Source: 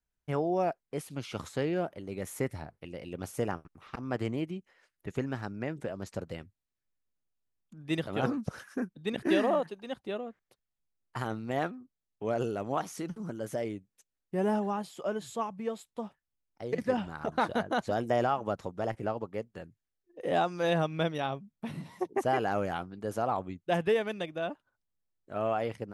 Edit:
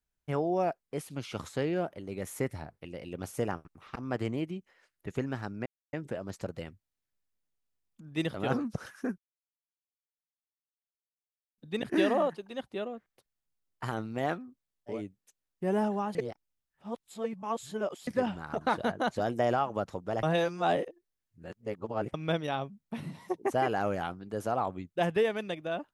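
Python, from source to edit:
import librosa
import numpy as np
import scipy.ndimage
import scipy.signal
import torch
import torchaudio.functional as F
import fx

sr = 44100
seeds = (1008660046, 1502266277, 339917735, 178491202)

y = fx.edit(x, sr, fx.insert_silence(at_s=5.66, length_s=0.27),
    fx.insert_silence(at_s=8.91, length_s=2.4),
    fx.cut(start_s=12.27, length_s=1.38, crossfade_s=0.16),
    fx.reverse_span(start_s=14.86, length_s=1.92),
    fx.reverse_span(start_s=18.94, length_s=1.91), tone=tone)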